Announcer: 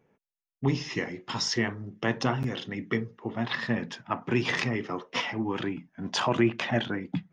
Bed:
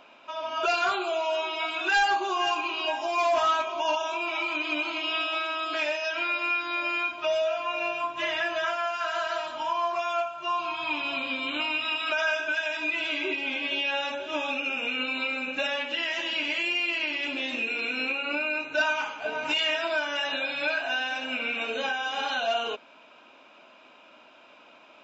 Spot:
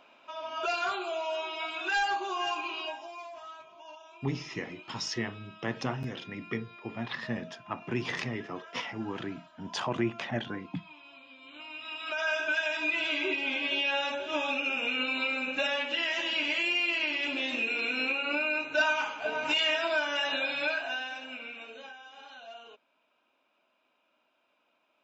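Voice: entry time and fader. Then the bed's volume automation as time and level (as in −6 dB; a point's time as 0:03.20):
3.60 s, −6.0 dB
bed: 0:02.78 −5.5 dB
0:03.32 −22 dB
0:11.36 −22 dB
0:12.42 −1 dB
0:20.55 −1 dB
0:22.10 −20 dB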